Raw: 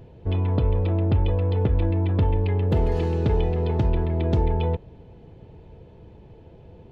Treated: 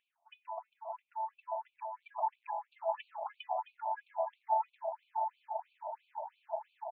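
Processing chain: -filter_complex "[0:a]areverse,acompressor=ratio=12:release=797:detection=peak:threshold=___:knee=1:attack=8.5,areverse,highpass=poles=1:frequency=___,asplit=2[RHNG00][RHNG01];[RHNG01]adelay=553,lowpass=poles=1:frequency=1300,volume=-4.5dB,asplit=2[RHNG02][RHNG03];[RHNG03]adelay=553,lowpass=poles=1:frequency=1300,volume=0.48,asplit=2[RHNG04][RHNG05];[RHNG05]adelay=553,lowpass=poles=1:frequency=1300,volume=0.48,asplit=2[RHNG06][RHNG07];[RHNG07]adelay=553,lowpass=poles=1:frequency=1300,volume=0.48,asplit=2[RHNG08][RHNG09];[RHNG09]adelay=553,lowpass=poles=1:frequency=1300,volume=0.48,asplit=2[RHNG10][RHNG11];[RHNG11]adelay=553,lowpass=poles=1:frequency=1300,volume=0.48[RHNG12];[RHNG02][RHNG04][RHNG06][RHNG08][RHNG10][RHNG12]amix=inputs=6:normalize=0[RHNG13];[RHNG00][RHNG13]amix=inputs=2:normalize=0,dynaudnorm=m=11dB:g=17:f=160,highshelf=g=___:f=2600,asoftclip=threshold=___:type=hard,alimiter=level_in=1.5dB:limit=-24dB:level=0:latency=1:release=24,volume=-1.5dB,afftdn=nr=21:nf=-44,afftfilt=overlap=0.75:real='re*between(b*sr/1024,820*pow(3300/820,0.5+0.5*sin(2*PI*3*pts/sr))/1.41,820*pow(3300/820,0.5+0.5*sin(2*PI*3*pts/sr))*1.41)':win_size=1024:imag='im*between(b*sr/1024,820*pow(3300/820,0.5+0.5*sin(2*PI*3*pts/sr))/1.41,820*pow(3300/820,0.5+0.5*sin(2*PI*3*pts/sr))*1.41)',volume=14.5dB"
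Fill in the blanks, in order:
-30dB, 58, -10, -18dB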